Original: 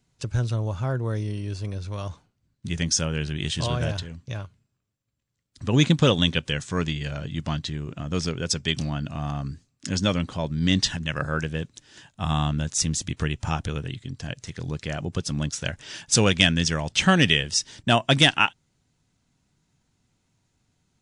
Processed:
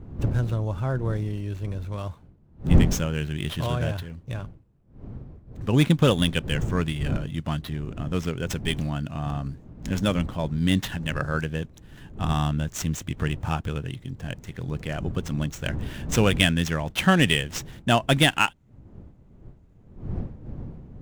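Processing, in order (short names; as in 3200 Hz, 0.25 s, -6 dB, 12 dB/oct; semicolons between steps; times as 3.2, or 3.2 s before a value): median filter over 9 samples; wind noise 150 Hz -33 dBFS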